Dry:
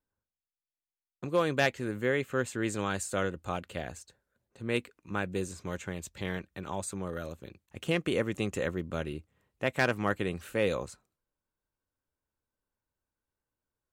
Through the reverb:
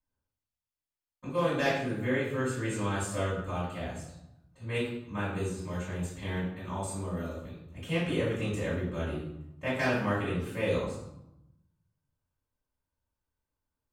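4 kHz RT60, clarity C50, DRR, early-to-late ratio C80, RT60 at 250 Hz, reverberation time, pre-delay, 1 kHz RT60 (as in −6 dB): 0.60 s, 1.5 dB, −10.0 dB, 6.0 dB, 1.2 s, 0.85 s, 3 ms, 0.85 s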